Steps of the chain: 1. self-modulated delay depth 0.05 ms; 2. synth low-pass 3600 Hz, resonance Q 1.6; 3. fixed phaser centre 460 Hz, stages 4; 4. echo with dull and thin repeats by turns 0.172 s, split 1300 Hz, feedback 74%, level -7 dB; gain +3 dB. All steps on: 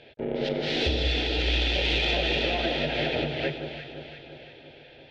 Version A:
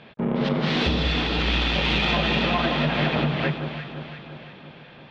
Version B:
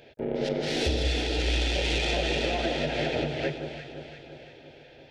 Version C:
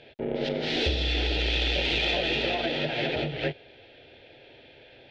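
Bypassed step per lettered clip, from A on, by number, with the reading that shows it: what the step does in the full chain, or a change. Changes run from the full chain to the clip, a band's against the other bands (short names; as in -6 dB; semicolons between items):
3, 500 Hz band -6.0 dB; 2, 4 kHz band -3.5 dB; 4, momentary loudness spread change -10 LU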